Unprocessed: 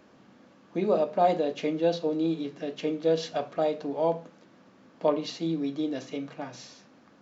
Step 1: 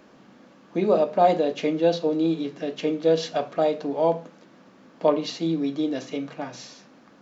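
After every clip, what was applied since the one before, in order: peaking EQ 100 Hz -11.5 dB 0.31 oct; trim +4.5 dB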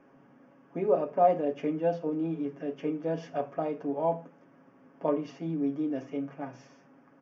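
boxcar filter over 11 samples; comb 7.3 ms; trim -7 dB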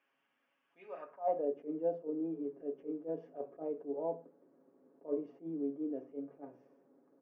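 band-pass sweep 3 kHz -> 410 Hz, 0.83–1.49 s; attacks held to a fixed rise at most 270 dB/s; trim -2 dB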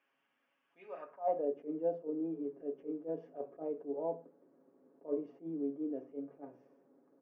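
no audible change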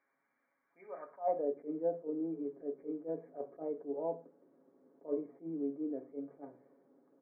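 brick-wall FIR low-pass 2.4 kHz

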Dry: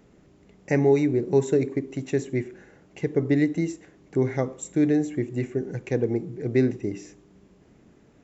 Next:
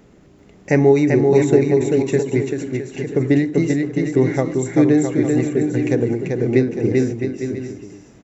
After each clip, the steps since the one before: bouncing-ball echo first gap 390 ms, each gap 0.7×, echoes 5; endings held to a fixed fall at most 110 dB/s; trim +7 dB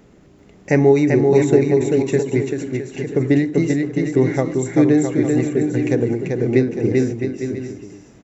no audible change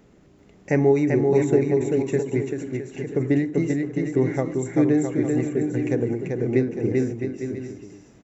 dynamic bell 4.3 kHz, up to -7 dB, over -49 dBFS, Q 1.4; trim -5 dB

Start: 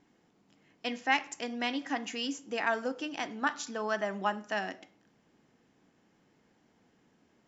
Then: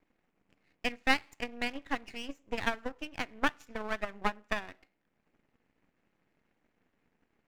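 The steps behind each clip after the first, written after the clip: transient shaper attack +11 dB, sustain -5 dB; resonant high shelf 3 kHz -7 dB, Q 3; half-wave rectifier; trim -5.5 dB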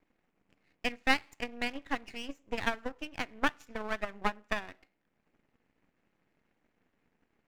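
no audible change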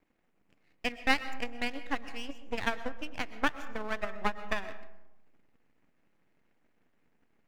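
reverberation RT60 1.0 s, pre-delay 85 ms, DRR 13 dB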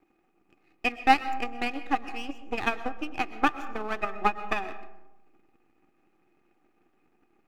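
small resonant body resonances 350/780/1200/2500 Hz, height 15 dB, ringing for 45 ms

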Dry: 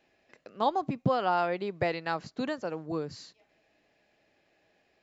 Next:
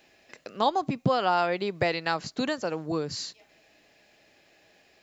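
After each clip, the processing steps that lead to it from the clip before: treble shelf 3.2 kHz +10 dB; in parallel at +1 dB: compression, threshold -36 dBFS, peak gain reduction 15 dB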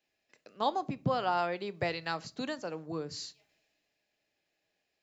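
on a send at -16 dB: reverberation RT60 0.45 s, pre-delay 7 ms; on the sum: three bands expanded up and down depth 40%; trim -7.5 dB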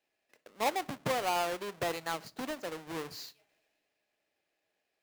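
square wave that keeps the level; tone controls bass -8 dB, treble -3 dB; trim -4 dB

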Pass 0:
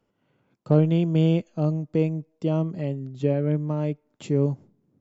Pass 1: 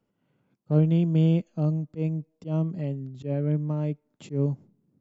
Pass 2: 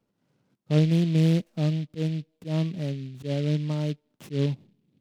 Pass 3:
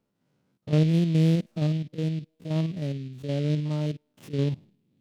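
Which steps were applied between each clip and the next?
peaking EQ 180 Hz +6 dB 1.2 oct; slow attack 108 ms; trim -5.5 dB
delay time shaken by noise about 2.9 kHz, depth 0.062 ms
spectrogram pixelated in time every 50 ms

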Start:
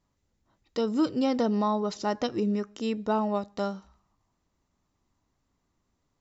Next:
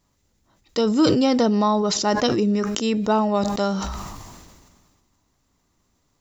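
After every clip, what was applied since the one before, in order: treble shelf 4.2 kHz +8 dB; decay stretcher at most 32 dB/s; trim +6.5 dB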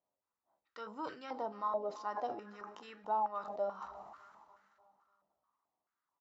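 feedback delay 297 ms, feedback 57%, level -17 dB; flange 0.64 Hz, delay 9.8 ms, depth 5.7 ms, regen +76%; step-sequenced band-pass 4.6 Hz 650–1600 Hz; trim -4 dB

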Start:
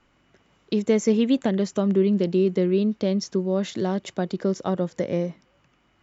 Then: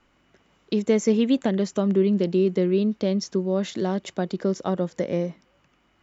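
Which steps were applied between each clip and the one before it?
peaking EQ 120 Hz -7 dB 0.34 oct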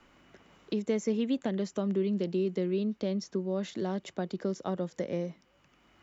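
three bands compressed up and down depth 40%; trim -8.5 dB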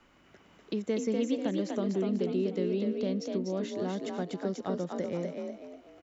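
frequency-shifting echo 245 ms, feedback 37%, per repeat +44 Hz, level -4 dB; trim -1.5 dB

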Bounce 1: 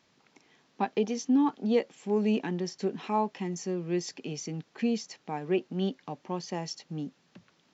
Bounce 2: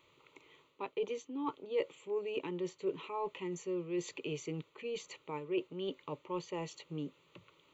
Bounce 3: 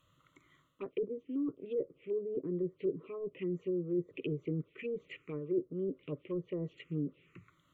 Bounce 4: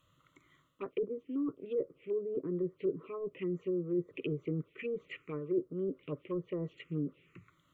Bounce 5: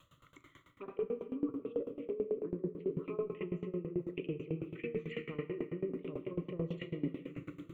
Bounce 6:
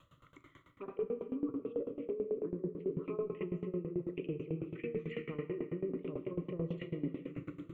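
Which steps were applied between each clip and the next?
reverse; compression 6:1, threshold -34 dBFS, peak gain reduction 13 dB; reverse; static phaser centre 1.1 kHz, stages 8; trim +4 dB
low-pass that closes with the level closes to 440 Hz, closed at -34 dBFS; touch-sensitive phaser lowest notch 370 Hz, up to 2.7 kHz, full sweep at -37.5 dBFS; static phaser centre 2.1 kHz, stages 4; trim +6.5 dB
dynamic bell 1.3 kHz, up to +8 dB, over -57 dBFS, Q 1.1
reverse; compression, threshold -41 dBFS, peak gain reduction 13 dB; reverse; simulated room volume 150 m³, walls hard, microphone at 0.31 m; sawtooth tremolo in dB decaying 9.1 Hz, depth 20 dB; trim +10.5 dB
treble shelf 3 kHz -9 dB; in parallel at +3 dB: peak limiter -30.5 dBFS, peak gain reduction 7.5 dB; on the sum: trim -6 dB

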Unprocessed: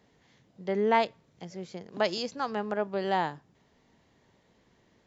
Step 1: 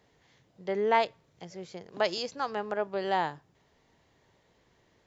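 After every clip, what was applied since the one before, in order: peaking EQ 220 Hz -7 dB 0.75 oct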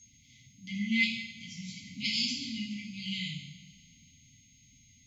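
whistle 6.5 kHz -58 dBFS; two-slope reverb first 0.8 s, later 2.8 s, DRR -6 dB; FFT band-reject 290–2000 Hz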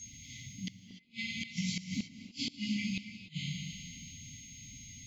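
compression 10:1, threshold -40 dBFS, peak gain reduction 17.5 dB; inverted gate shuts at -34 dBFS, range -38 dB; gated-style reverb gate 320 ms rising, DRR 9.5 dB; trim +10 dB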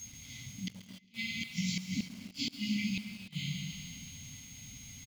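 feedback delay 135 ms, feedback 49%, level -16 dB; in parallel at -5 dB: bit crusher 8-bit; on the sum: trim -3 dB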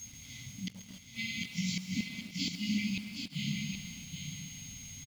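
delay 774 ms -6 dB

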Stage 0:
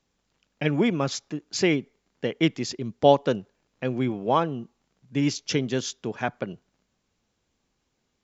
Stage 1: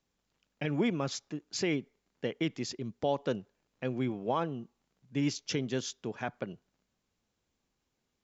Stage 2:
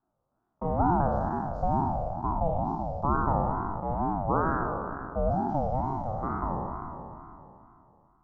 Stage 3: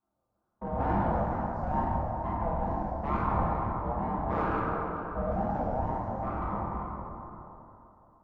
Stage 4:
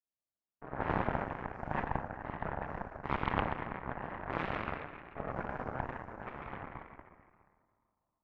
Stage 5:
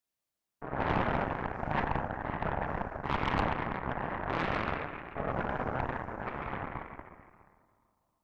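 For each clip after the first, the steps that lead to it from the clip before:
peak limiter -13 dBFS, peak gain reduction 8 dB; trim -6.5 dB
spectral sustain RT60 2.86 s; elliptic band-pass 140–910 Hz, stop band 40 dB; ring modulator with a swept carrier 430 Hz, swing 25%, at 2.2 Hz; trim +5.5 dB
single-diode clipper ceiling -24 dBFS; reverberation RT60 2.3 s, pre-delay 7 ms, DRR -4 dB; trim -6.5 dB
Chebyshev shaper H 3 -10 dB, 4 -15 dB, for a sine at -15 dBFS
saturation -25.5 dBFS, distortion -10 dB; trim +7 dB

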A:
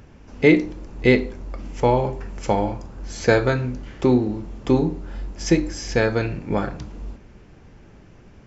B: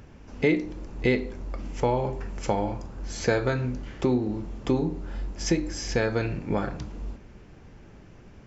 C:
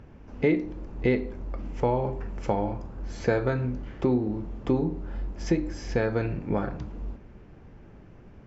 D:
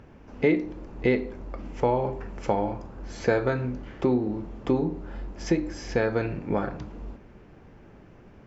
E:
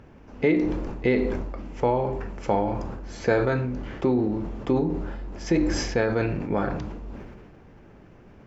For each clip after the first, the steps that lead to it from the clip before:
compression 2:1, threshold -22 dBFS, peak gain reduction 7.5 dB; trim -1.5 dB
low-pass 1.6 kHz 6 dB/octave
bass shelf 170 Hz -7 dB; trim +2.5 dB
decay stretcher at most 33 dB/s

